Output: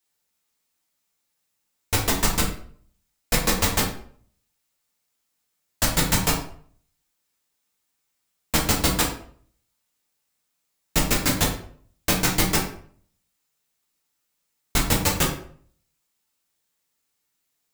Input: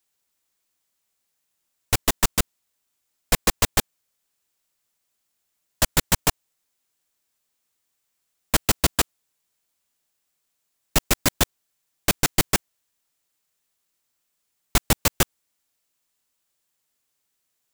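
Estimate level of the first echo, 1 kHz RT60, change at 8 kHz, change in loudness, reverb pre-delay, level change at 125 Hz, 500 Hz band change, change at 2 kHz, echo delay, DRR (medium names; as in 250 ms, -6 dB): no echo, 0.50 s, 0.0 dB, +0.5 dB, 4 ms, +2.0 dB, +0.5 dB, +0.5 dB, no echo, -3.0 dB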